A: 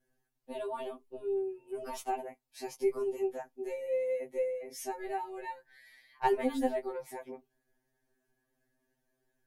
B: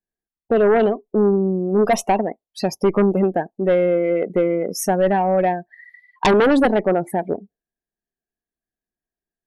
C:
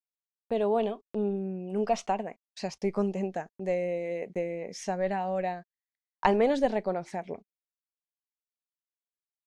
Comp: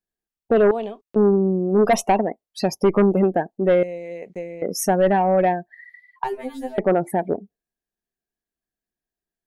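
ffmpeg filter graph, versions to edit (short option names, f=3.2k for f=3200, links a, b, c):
-filter_complex "[2:a]asplit=2[a][b];[1:a]asplit=4[c][d][e][f];[c]atrim=end=0.712[g];[a]atrim=start=0.708:end=1.162[h];[d]atrim=start=1.158:end=3.832[i];[b]atrim=start=3.828:end=4.622[j];[e]atrim=start=4.618:end=6.242[k];[0:a]atrim=start=6.238:end=6.782[l];[f]atrim=start=6.778[m];[g][h]acrossfade=d=0.004:c1=hsin:c2=hsin[n];[n][i]acrossfade=d=0.004:c1=hsin:c2=hsin[o];[o][j]acrossfade=d=0.004:c1=hsin:c2=hsin[p];[p][k]acrossfade=d=0.004:c1=hsin:c2=hsin[q];[q][l]acrossfade=d=0.004:c1=hsin:c2=hsin[r];[r][m]acrossfade=d=0.004:c1=hsin:c2=hsin"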